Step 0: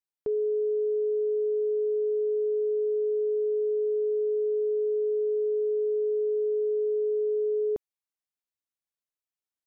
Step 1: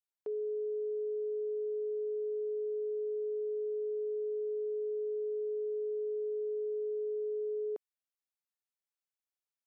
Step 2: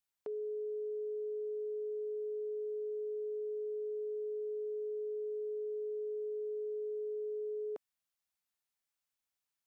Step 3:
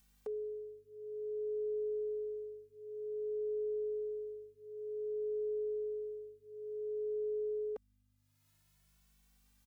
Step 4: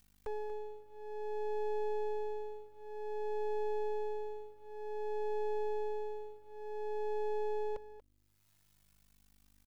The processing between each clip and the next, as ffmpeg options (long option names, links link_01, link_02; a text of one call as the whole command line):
ffmpeg -i in.wav -af "highpass=440,volume=-5.5dB" out.wav
ffmpeg -i in.wav -af "equalizer=frequency=410:width_type=o:width=0.77:gain=-8,volume=4.5dB" out.wav
ffmpeg -i in.wav -filter_complex "[0:a]acompressor=mode=upward:threshold=-59dB:ratio=2.5,aeval=exprs='val(0)+0.000282*(sin(2*PI*50*n/s)+sin(2*PI*2*50*n/s)/2+sin(2*PI*3*50*n/s)/3+sin(2*PI*4*50*n/s)/4+sin(2*PI*5*50*n/s)/5)':channel_layout=same,asplit=2[link_01][link_02];[link_02]adelay=2.2,afreqshift=0.54[link_03];[link_01][link_03]amix=inputs=2:normalize=1,volume=2.5dB" out.wav
ffmpeg -i in.wav -af "aeval=exprs='max(val(0),0)':channel_layout=same,aecho=1:1:236:0.2,volume=4.5dB" out.wav